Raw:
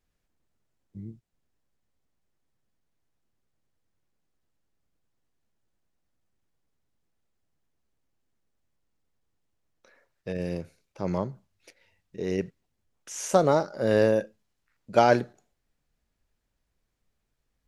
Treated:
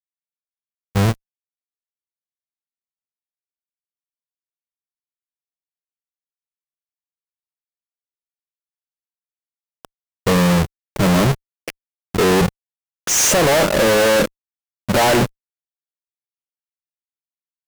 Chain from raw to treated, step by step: square wave that keeps the level; in parallel at +3 dB: gain riding within 4 dB 2 s; on the sum: fuzz box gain 34 dB, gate -39 dBFS

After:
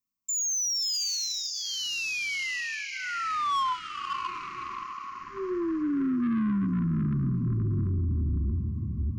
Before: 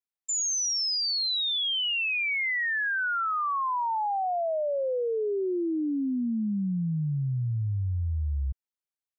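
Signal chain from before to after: peaking EQ 2.5 kHz -11.5 dB 2.4 oct; static phaser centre 2.4 kHz, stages 8; de-hum 62.68 Hz, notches 8; in parallel at -2 dB: compression, threshold -42 dBFS, peak gain reduction 14.5 dB; on the sum: small resonant body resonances 220/1100 Hz, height 9 dB, ringing for 40 ms; on a send: echo that smears into a reverb 587 ms, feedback 53%, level -6.5 dB; on the sum: saturation -30 dBFS, distortion -7 dB; FFT band-reject 390–1000 Hz; trim +5.5 dB

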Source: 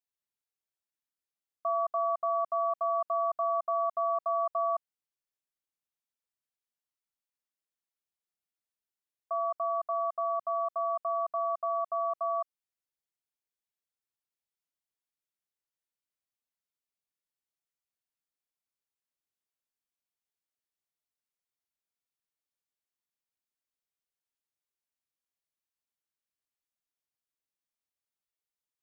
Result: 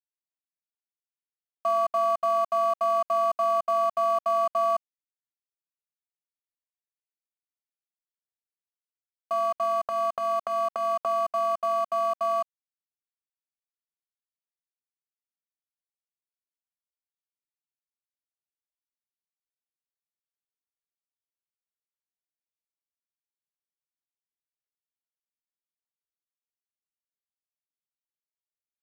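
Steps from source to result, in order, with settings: 9.63–11.06 s: transient shaper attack -8 dB, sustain +9 dB; crossover distortion -48 dBFS; trim +6 dB

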